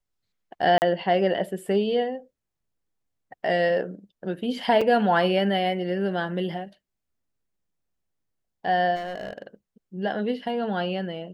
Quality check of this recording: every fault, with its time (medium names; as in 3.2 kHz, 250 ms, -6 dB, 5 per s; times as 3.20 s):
0.78–0.82 s: dropout 39 ms
4.81 s: dropout 4.7 ms
8.95–9.42 s: clipped -29 dBFS